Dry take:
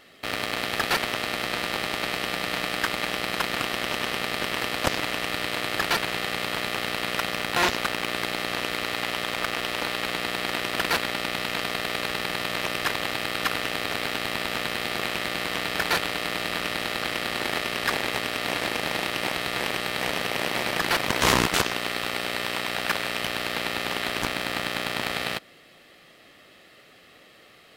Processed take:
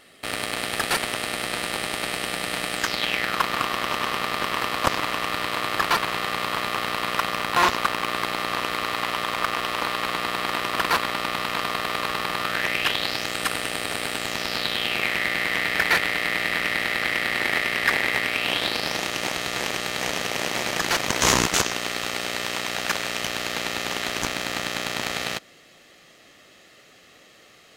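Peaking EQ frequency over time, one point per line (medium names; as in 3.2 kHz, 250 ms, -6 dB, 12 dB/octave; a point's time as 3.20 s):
peaking EQ +10 dB 0.52 oct
2.74 s 9.2 kHz
3.38 s 1.1 kHz
12.39 s 1.1 kHz
13.43 s 8.8 kHz
14.13 s 8.8 kHz
15.13 s 2 kHz
18.25 s 2 kHz
19.02 s 6.5 kHz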